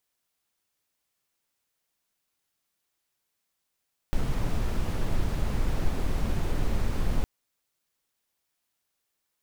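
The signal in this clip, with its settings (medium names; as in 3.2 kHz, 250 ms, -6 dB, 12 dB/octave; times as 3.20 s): noise brown, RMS -24.5 dBFS 3.11 s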